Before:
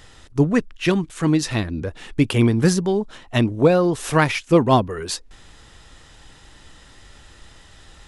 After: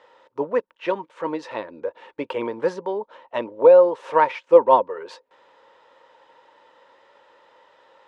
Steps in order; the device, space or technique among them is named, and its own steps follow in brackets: tin-can telephone (band-pass 440–2800 Hz; small resonant body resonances 530/920 Hz, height 18 dB, ringing for 35 ms); trim -8 dB

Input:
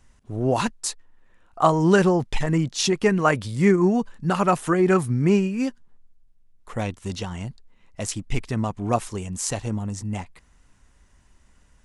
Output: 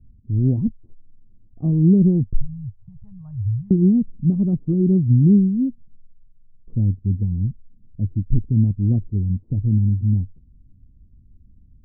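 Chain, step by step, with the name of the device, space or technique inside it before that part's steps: the neighbour's flat through the wall (low-pass 260 Hz 24 dB/octave; peaking EQ 97 Hz +7 dB 0.53 oct); 2.33–3.71 s: Chebyshev band-stop 110–930 Hz, order 3; trim +7 dB

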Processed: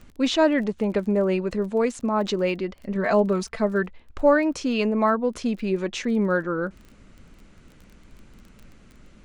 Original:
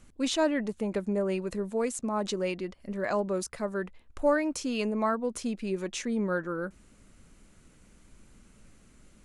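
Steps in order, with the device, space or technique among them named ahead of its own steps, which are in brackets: lo-fi chain (low-pass 4.6 kHz 12 dB/octave; wow and flutter 20 cents; crackle 20 per s -44 dBFS); 2.95–3.83 s: comb 4.5 ms, depth 63%; trim +7 dB

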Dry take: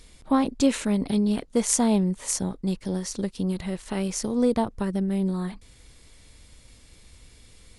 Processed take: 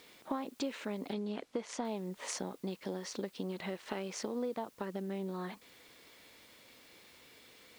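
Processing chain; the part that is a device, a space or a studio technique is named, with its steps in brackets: baby monitor (band-pass 330–3700 Hz; compression, threshold -36 dBFS, peak gain reduction 16 dB; white noise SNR 25 dB); 1.13–1.85 s: distance through air 55 m; trim +1 dB

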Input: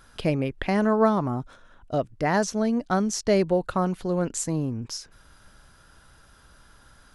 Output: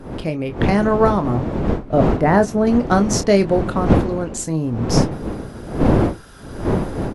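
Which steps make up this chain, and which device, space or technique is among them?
1.36–2.67 s: peaking EQ 5.1 kHz -15 dB 2 oct; doubling 25 ms -9.5 dB; smartphone video outdoors (wind noise 350 Hz -27 dBFS; level rider gain up to 14.5 dB; trim -1 dB; AAC 96 kbps 44.1 kHz)

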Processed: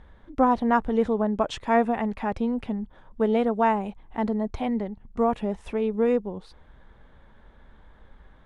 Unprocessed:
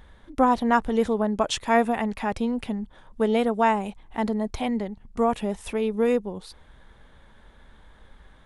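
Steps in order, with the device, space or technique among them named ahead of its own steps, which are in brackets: through cloth (low-pass 8.9 kHz 12 dB/octave; treble shelf 3.1 kHz -13 dB)

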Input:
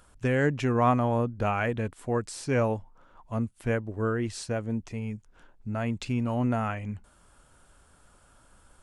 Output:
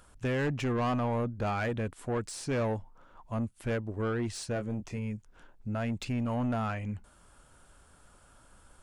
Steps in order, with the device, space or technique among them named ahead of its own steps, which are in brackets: saturation between pre-emphasis and de-emphasis (treble shelf 3.3 kHz +9 dB; saturation -25.5 dBFS, distortion -10 dB; treble shelf 3.3 kHz -9 dB); 4.53–4.98 s: doubling 24 ms -8 dB

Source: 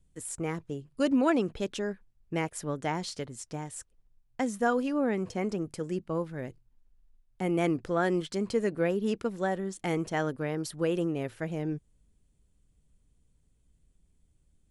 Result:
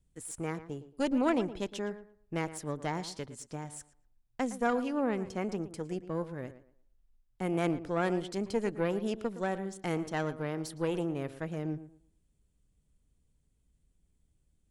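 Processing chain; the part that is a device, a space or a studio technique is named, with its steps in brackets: rockabilly slapback (valve stage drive 18 dB, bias 0.7; tape echo 115 ms, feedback 27%, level -12.5 dB, low-pass 2.2 kHz)

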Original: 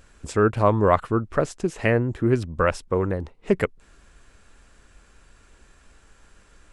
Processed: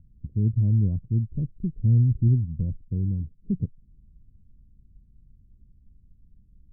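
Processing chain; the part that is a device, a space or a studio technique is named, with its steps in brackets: 1.56–2.28 s: bass shelf 72 Hz +9 dB; the neighbour's flat through the wall (low-pass 210 Hz 24 dB/octave; peaking EQ 120 Hz +5.5 dB 0.9 oct)

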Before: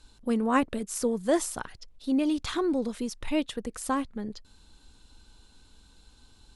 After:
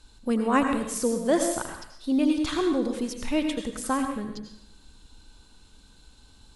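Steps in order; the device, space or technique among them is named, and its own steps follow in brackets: bathroom (reverberation RT60 0.75 s, pre-delay 76 ms, DRR 4.5 dB); trim +1.5 dB

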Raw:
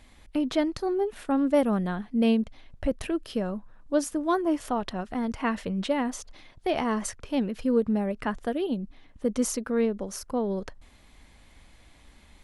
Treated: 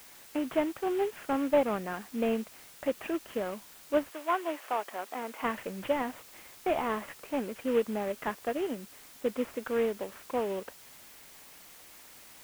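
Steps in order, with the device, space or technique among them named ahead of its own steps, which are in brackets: army field radio (band-pass 370–3100 Hz; CVSD coder 16 kbps; white noise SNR 20 dB); 4.10–5.42 s: high-pass 650 Hz -> 300 Hz 12 dB/octave

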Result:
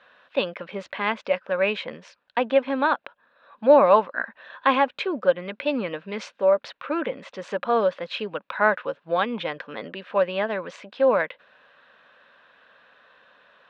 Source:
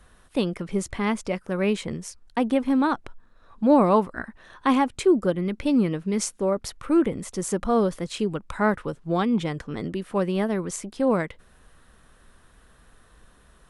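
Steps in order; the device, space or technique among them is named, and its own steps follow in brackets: phone earpiece (cabinet simulation 360–4000 Hz, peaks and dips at 360 Hz -9 dB, 560 Hz +9 dB, 1 kHz +4 dB, 1.6 kHz +8 dB, 2.6 kHz +8 dB, 3.7 kHz +5 dB)

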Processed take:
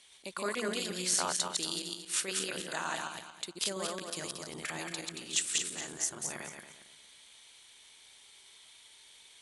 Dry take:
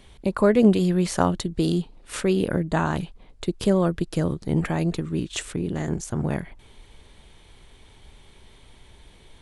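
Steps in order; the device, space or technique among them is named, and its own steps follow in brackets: backward echo that repeats 114 ms, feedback 52%, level -1 dB; piezo pickup straight into a mixer (low-pass 8.8 kHz 12 dB/octave; differentiator); 2.60–3.01 s: high-pass 140 Hz; trim +4.5 dB

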